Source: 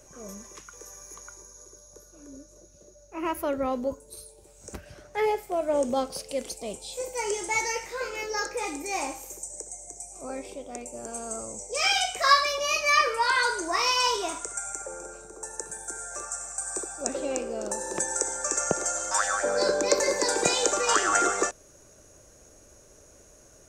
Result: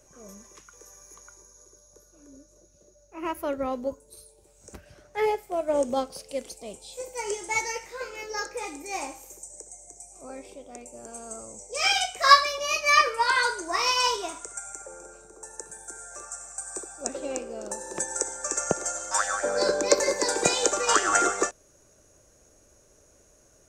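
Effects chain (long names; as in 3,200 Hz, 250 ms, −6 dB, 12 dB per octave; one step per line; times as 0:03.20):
expander for the loud parts 1.5 to 1, over −34 dBFS
level +5 dB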